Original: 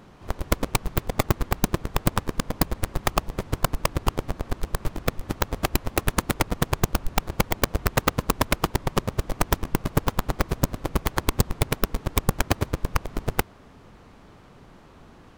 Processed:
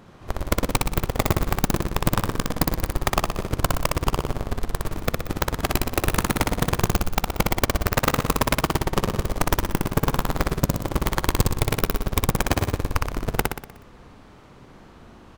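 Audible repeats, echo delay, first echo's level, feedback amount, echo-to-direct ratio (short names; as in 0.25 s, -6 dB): 6, 61 ms, -3.0 dB, 53%, -1.5 dB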